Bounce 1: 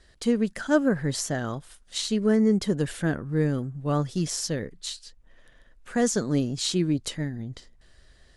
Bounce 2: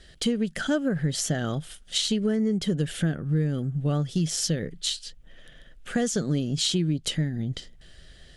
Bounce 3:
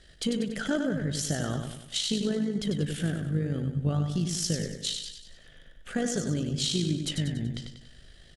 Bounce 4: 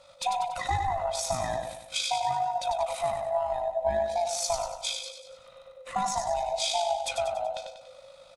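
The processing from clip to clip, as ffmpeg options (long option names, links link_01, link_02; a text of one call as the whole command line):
ffmpeg -i in.wav -af "equalizer=frequency=160:width_type=o:width=0.33:gain=8,equalizer=frequency=1000:width_type=o:width=0.33:gain=-11,equalizer=frequency=3150:width_type=o:width=0.33:gain=8,acompressor=threshold=-28dB:ratio=5,volume=5.5dB" out.wav
ffmpeg -i in.wav -filter_complex "[0:a]tremolo=f=52:d=0.462,asplit=2[link_01][link_02];[link_02]aecho=0:1:95|190|285|380|475|570:0.501|0.241|0.115|0.0554|0.0266|0.0128[link_03];[link_01][link_03]amix=inputs=2:normalize=0,volume=-2dB" out.wav
ffmpeg -i in.wav -af "afftfilt=real='real(if(lt(b,1008),b+24*(1-2*mod(floor(b/24),2)),b),0)':imag='imag(if(lt(b,1008),b+24*(1-2*mod(floor(b/24),2)),b),0)':win_size=2048:overlap=0.75" out.wav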